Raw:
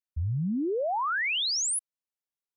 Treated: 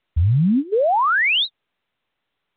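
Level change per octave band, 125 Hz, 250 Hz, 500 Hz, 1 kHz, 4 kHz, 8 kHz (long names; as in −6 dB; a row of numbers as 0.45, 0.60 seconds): +12.5 dB, +10.5 dB, +10.5 dB, +11.0 dB, +7.0 dB, below −40 dB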